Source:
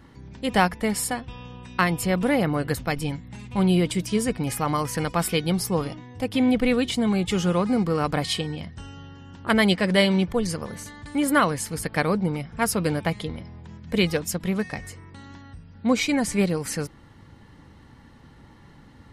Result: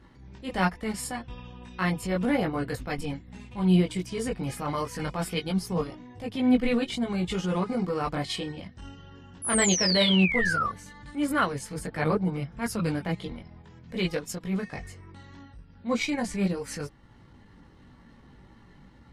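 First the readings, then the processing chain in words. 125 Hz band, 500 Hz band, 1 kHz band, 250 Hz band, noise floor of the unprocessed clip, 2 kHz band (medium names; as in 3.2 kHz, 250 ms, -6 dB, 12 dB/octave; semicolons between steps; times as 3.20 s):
-3.5 dB, -5.0 dB, -5.0 dB, -4.0 dB, -50 dBFS, -3.0 dB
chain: treble shelf 11 kHz -11.5 dB; painted sound fall, 9.42–10.70 s, 1.1–11 kHz -23 dBFS; chorus voices 6, 0.69 Hz, delay 19 ms, depth 3.1 ms; transient shaper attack -8 dB, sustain -4 dB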